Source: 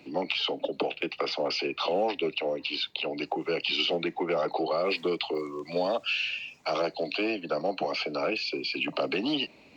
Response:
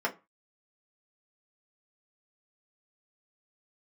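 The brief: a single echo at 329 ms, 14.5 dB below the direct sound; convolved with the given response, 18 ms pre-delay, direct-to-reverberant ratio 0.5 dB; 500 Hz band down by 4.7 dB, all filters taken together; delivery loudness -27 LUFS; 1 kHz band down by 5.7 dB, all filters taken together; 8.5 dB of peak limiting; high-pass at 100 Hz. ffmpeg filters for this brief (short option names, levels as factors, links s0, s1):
-filter_complex "[0:a]highpass=100,equalizer=f=500:t=o:g=-4,equalizer=f=1000:t=o:g=-6.5,alimiter=limit=0.0668:level=0:latency=1,aecho=1:1:329:0.188,asplit=2[s0][s1];[1:a]atrim=start_sample=2205,adelay=18[s2];[s1][s2]afir=irnorm=-1:irlink=0,volume=0.355[s3];[s0][s3]amix=inputs=2:normalize=0,volume=1.68"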